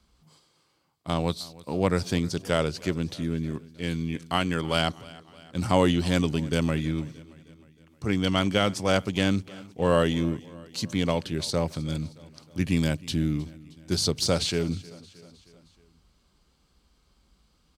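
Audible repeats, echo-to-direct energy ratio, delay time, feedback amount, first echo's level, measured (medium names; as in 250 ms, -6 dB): 3, -19.5 dB, 312 ms, 57%, -21.0 dB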